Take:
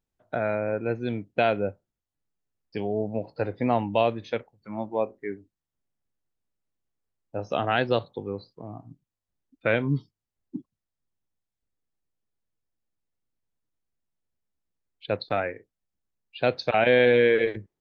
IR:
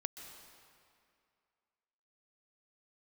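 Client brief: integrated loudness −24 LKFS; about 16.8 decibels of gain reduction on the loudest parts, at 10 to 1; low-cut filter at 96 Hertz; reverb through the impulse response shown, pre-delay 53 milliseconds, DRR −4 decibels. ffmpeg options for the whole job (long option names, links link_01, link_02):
-filter_complex "[0:a]highpass=96,acompressor=threshold=-33dB:ratio=10,asplit=2[link_01][link_02];[1:a]atrim=start_sample=2205,adelay=53[link_03];[link_02][link_03]afir=irnorm=-1:irlink=0,volume=5.5dB[link_04];[link_01][link_04]amix=inputs=2:normalize=0,volume=10.5dB"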